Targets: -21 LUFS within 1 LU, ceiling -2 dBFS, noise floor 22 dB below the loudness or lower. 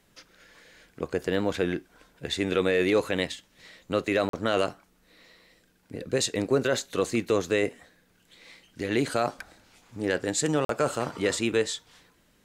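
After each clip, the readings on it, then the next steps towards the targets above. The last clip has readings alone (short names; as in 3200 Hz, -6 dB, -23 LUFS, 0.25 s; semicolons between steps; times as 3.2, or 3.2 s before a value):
dropouts 2; longest dropout 43 ms; loudness -27.5 LUFS; peak -11.0 dBFS; loudness target -21.0 LUFS
-> interpolate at 4.29/10.65, 43 ms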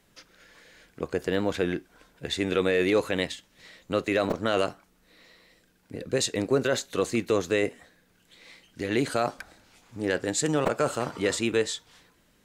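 dropouts 0; loudness -27.5 LUFS; peak -11.0 dBFS; loudness target -21.0 LUFS
-> gain +6.5 dB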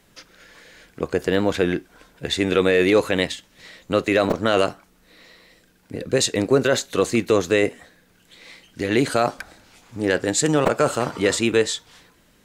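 loudness -21.0 LUFS; peak -4.5 dBFS; noise floor -58 dBFS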